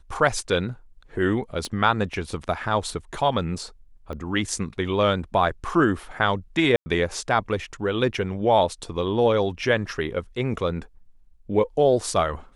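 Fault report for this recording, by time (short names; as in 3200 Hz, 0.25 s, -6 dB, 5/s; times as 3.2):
1.65 pop -17 dBFS
4.13 pop -23 dBFS
6.76–6.86 gap 0.1 s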